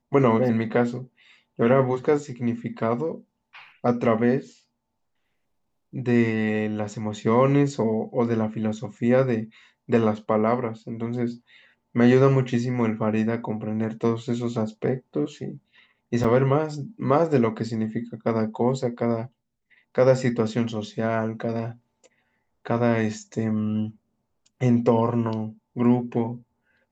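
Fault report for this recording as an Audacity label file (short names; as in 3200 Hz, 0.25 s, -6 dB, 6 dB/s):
16.240000	16.240000	gap 4.6 ms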